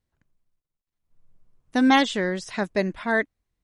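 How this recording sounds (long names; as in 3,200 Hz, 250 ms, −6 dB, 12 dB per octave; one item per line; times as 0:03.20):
background noise floor −88 dBFS
spectral slope −3.0 dB per octave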